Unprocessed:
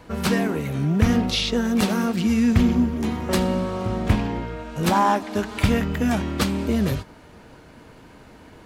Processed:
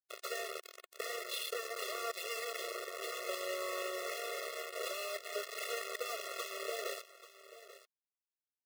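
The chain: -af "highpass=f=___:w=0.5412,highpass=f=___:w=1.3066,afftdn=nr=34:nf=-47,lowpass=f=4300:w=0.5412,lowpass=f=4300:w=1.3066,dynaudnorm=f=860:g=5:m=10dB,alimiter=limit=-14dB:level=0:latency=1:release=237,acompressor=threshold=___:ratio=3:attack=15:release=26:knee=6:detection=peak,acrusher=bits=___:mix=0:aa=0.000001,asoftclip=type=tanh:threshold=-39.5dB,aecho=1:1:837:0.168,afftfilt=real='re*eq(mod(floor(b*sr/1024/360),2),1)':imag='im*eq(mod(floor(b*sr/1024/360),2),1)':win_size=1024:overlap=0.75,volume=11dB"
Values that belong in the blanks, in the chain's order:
420, 420, -37dB, 4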